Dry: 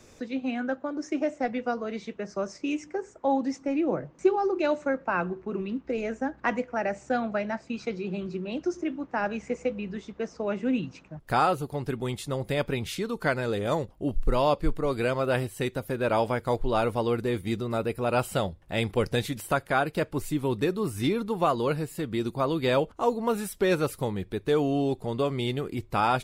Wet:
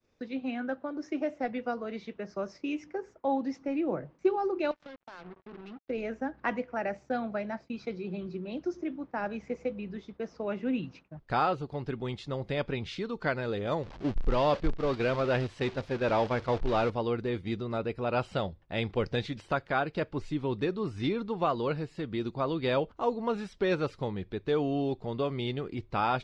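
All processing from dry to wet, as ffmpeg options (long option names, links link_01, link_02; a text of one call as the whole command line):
ffmpeg -i in.wav -filter_complex "[0:a]asettb=1/sr,asplit=3[link_01][link_02][link_03];[link_01]atrim=end=4.714[link_04];[link_02]atrim=start=4.71:end=5.9,asetpts=PTS-STARTPTS,afade=type=in:duration=0.004:curve=qsin,afade=type=out:start_time=1.186:duration=0.004:curve=qsin,acompressor=threshold=-39dB:ratio=12:attack=3.2:release=140:knee=1:detection=peak,acrusher=bits=6:mix=0:aa=0.5[link_05];[link_03]atrim=start=5.896[link_06];[link_04][link_05]acrossfade=duration=0.004:curve1=hsin:curve2=qsin[link_07];[link_07][link_06]acrossfade=duration=0.004:curve1=qsin:curve2=hsin,asettb=1/sr,asplit=3[link_08][link_09][link_10];[link_08]atrim=end=6.974[link_11];[link_09]atrim=start=6.97:end=10.26,asetpts=PTS-STARTPTS,afade=type=in:duration=0.004:curve=qsin,afade=type=out:start_time=3.286:duration=0.004:curve=qsin,agate=range=-33dB:threshold=-49dB:ratio=3:release=100:detection=peak,equalizer=frequency=1700:width=0.65:gain=-2.5,bandreject=frequency=2800:width=17[link_12];[link_10]atrim=start=10.256[link_13];[link_11][link_12]acrossfade=duration=0.004:curve1=hsin:curve2=qsin[link_14];[link_14][link_13]acrossfade=duration=0.004:curve1=qsin:curve2=hsin,asettb=1/sr,asplit=3[link_15][link_16][link_17];[link_15]atrim=end=13.834[link_18];[link_16]atrim=start=13.83:end=16.9,asetpts=PTS-STARTPTS,afade=type=in:duration=0.004:curve=qsin,afade=type=out:start_time=3.066:duration=0.004:curve=qsin,aeval=exprs='val(0)+0.5*0.0376*sgn(val(0))':channel_layout=same,agate=range=-8dB:threshold=-28dB:ratio=16:release=100:detection=peak[link_19];[link_17]atrim=start=16.896[link_20];[link_18][link_19]acrossfade=duration=0.004:curve1=hsin:curve2=qsin[link_21];[link_21][link_20]acrossfade=duration=0.004:curve1=qsin:curve2=hsin,agate=range=-33dB:threshold=-43dB:ratio=3:detection=peak,lowpass=frequency=5100:width=0.5412,lowpass=frequency=5100:width=1.3066,volume=-4dB" out.wav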